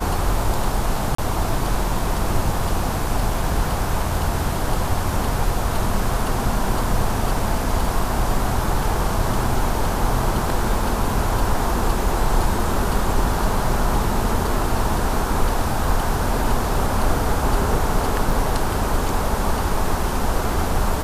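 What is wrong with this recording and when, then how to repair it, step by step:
0:01.15–0:01.18: drop-out 34 ms
0:18.31: drop-out 2.8 ms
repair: repair the gap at 0:01.15, 34 ms
repair the gap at 0:18.31, 2.8 ms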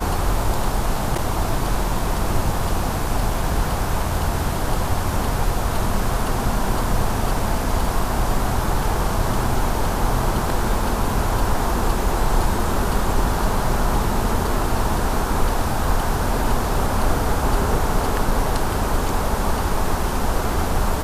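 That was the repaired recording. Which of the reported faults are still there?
none of them is left

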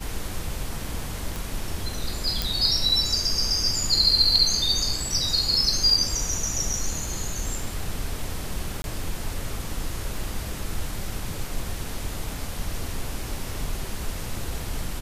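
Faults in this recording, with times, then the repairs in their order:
0:01.36: click
0:02.42: click
0:08.82–0:08.84: drop-out 21 ms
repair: click removal
repair the gap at 0:08.82, 21 ms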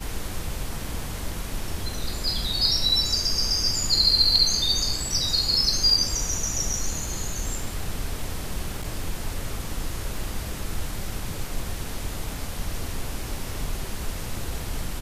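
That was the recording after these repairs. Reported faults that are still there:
none of them is left

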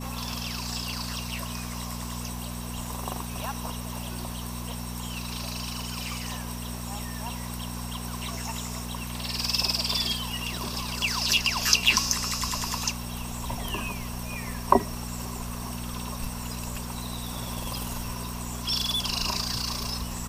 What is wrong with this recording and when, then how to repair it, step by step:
mains hum 60 Hz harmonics 4 −36 dBFS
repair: hum removal 60 Hz, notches 4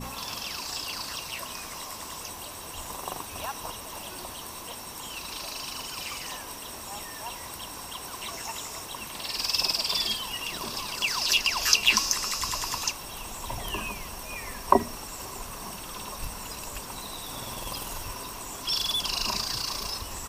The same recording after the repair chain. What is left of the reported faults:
none of them is left

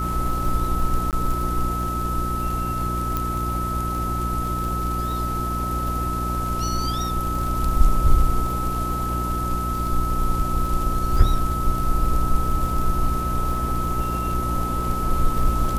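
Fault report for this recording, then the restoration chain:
surface crackle 53 per second −28 dBFS
mains hum 60 Hz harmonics 6 −27 dBFS
whistle 1,300 Hz −26 dBFS
0:01.11–0:01.13: drop-out 18 ms
0:03.17: click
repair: click removal
hum removal 60 Hz, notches 6
notch filter 1,300 Hz, Q 30
repair the gap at 0:01.11, 18 ms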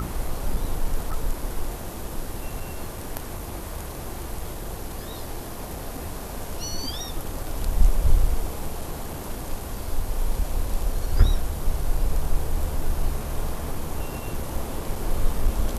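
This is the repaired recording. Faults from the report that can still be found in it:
0:03.17: click

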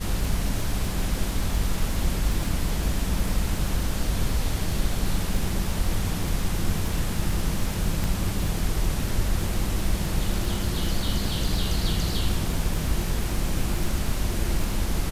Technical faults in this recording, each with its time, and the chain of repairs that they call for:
surface crackle 49 per second −29 dBFS
0:08.04: click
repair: click removal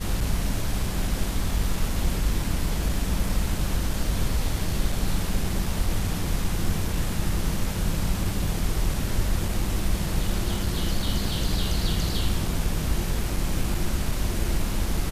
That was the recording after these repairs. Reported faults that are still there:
0:08.04: click

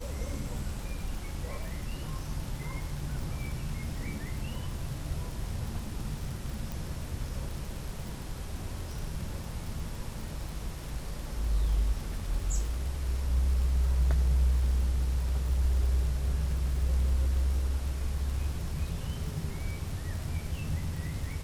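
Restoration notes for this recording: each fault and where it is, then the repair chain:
surface crackle 59 per second −36 dBFS
0:06.72: click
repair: click removal

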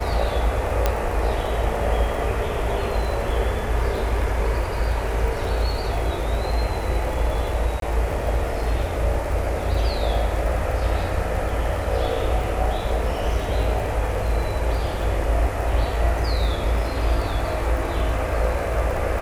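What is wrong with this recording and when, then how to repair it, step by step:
surface crackle 44 per second −29 dBFS
0:00.86: click −5 dBFS
0:07.80–0:07.82: drop-out 22 ms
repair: click removal
repair the gap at 0:07.80, 22 ms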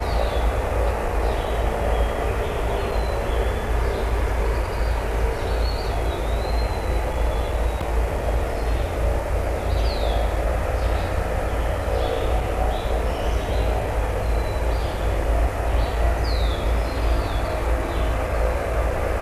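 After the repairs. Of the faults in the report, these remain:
none of them is left

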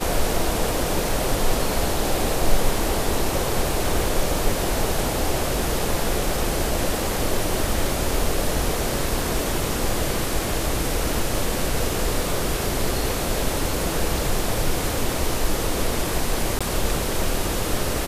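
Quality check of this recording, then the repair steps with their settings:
0:16.59–0:16.61: drop-out 16 ms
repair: repair the gap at 0:16.59, 16 ms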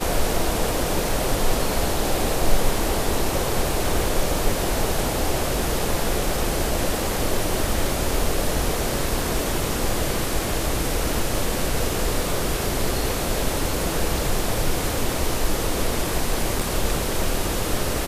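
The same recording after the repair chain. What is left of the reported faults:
none of them is left

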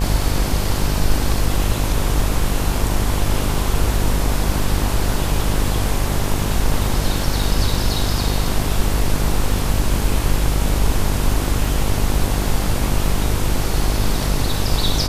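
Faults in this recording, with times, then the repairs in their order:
mains buzz 50 Hz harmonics 23 −22 dBFS
0:11.65: drop-out 2.1 ms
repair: hum removal 50 Hz, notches 23
repair the gap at 0:11.65, 2.1 ms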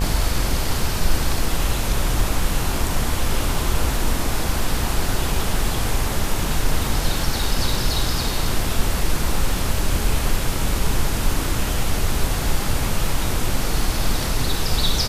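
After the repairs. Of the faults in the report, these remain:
none of them is left

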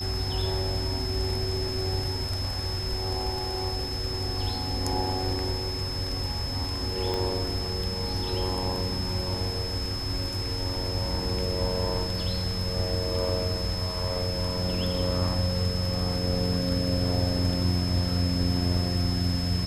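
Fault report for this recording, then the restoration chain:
whistle 5,200 Hz −33 dBFS
0:07.14: click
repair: click removal
notch filter 5,200 Hz, Q 30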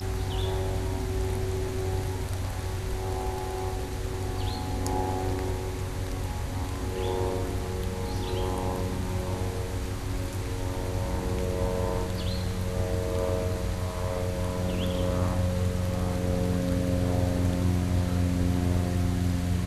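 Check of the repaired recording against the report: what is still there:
0:07.14: click

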